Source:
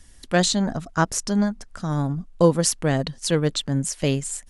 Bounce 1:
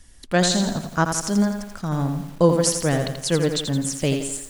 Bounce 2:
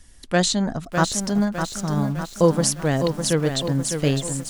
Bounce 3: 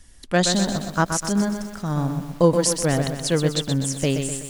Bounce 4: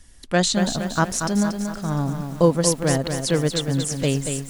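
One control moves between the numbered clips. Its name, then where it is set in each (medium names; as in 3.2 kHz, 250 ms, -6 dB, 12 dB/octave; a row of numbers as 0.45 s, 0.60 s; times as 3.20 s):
bit-crushed delay, time: 84 ms, 605 ms, 125 ms, 233 ms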